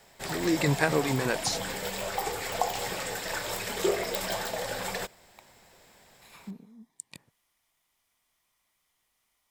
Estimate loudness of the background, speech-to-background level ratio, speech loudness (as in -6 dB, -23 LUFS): -32.5 LUFS, 4.0 dB, -28.5 LUFS